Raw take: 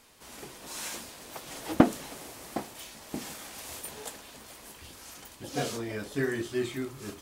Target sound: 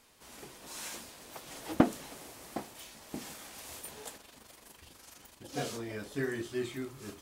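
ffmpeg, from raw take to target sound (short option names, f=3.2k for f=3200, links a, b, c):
-filter_complex "[0:a]asplit=3[a][b][c];[a]afade=t=out:st=4.16:d=0.02[d];[b]tremolo=f=24:d=0.571,afade=t=in:st=4.16:d=0.02,afade=t=out:st=5.51:d=0.02[e];[c]afade=t=in:st=5.51:d=0.02[f];[d][e][f]amix=inputs=3:normalize=0,volume=-4.5dB"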